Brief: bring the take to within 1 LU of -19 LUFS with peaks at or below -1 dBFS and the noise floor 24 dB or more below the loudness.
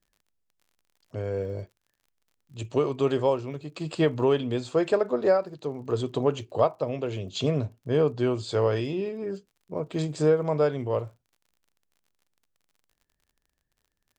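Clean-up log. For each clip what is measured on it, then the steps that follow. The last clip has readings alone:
ticks 43/s; loudness -27.0 LUFS; peak -10.0 dBFS; loudness target -19.0 LUFS
-> de-click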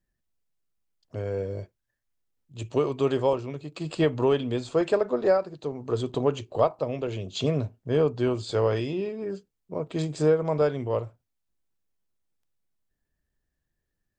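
ticks 0.070/s; loudness -27.0 LUFS; peak -10.0 dBFS; loudness target -19.0 LUFS
-> gain +8 dB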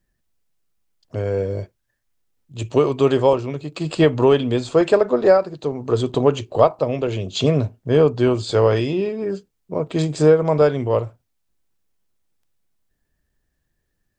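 loudness -19.0 LUFS; peak -2.0 dBFS; noise floor -73 dBFS

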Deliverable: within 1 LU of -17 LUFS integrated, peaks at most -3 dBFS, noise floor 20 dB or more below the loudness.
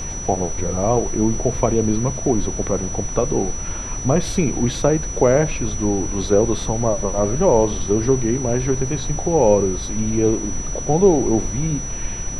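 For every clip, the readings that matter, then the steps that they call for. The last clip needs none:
steady tone 5900 Hz; tone level -29 dBFS; noise floor -28 dBFS; noise floor target -40 dBFS; loudness -20.0 LUFS; peak -2.0 dBFS; loudness target -17.0 LUFS
-> notch 5900 Hz, Q 30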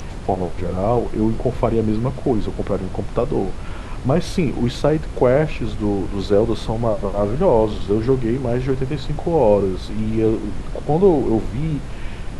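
steady tone none; noise floor -30 dBFS; noise floor target -41 dBFS
-> noise print and reduce 11 dB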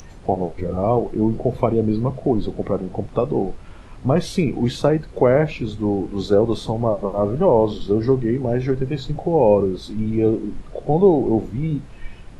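noise floor -40 dBFS; noise floor target -41 dBFS
-> noise print and reduce 6 dB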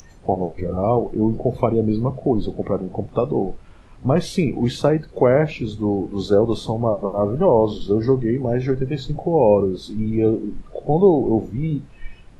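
noise floor -45 dBFS; loudness -20.5 LUFS; peak -3.0 dBFS; loudness target -17.0 LUFS
-> gain +3.5 dB; limiter -3 dBFS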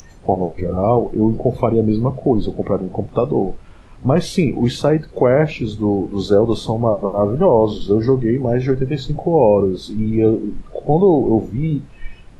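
loudness -17.5 LUFS; peak -3.0 dBFS; noise floor -41 dBFS

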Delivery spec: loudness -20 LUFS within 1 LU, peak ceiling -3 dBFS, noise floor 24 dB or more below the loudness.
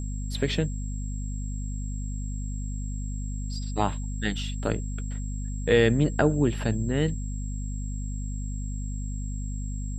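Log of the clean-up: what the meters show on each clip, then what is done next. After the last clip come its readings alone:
hum 50 Hz; harmonics up to 250 Hz; hum level -29 dBFS; steady tone 7600 Hz; tone level -45 dBFS; loudness -29.5 LUFS; peak -7.5 dBFS; loudness target -20.0 LUFS
-> notches 50/100/150/200/250 Hz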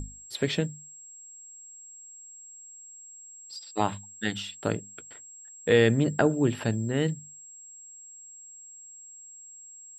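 hum none; steady tone 7600 Hz; tone level -45 dBFS
-> notch 7600 Hz, Q 30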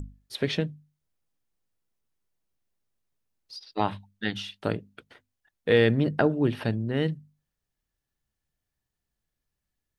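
steady tone none; loudness -27.5 LUFS; peak -7.5 dBFS; loudness target -20.0 LUFS
-> gain +7.5 dB; limiter -3 dBFS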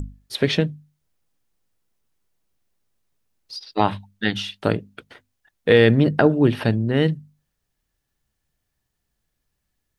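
loudness -20.5 LUFS; peak -3.0 dBFS; noise floor -77 dBFS

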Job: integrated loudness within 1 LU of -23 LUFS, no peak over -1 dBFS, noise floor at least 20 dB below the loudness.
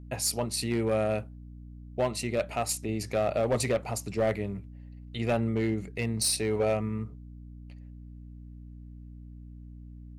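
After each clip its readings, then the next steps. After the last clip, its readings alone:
clipped 0.8%; flat tops at -20.0 dBFS; hum 60 Hz; harmonics up to 300 Hz; hum level -44 dBFS; loudness -29.5 LUFS; peak -20.0 dBFS; loudness target -23.0 LUFS
-> clip repair -20 dBFS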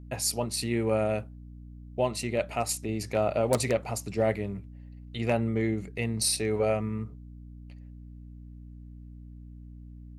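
clipped 0.0%; hum 60 Hz; harmonics up to 300 Hz; hum level -44 dBFS
-> de-hum 60 Hz, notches 5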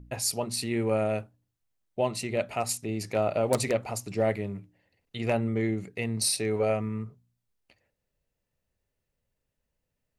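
hum none; loudness -29.0 LUFS; peak -10.5 dBFS; loudness target -23.0 LUFS
-> gain +6 dB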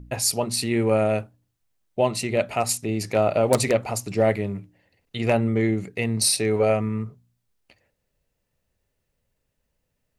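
loudness -23.0 LUFS; peak -4.5 dBFS; noise floor -77 dBFS

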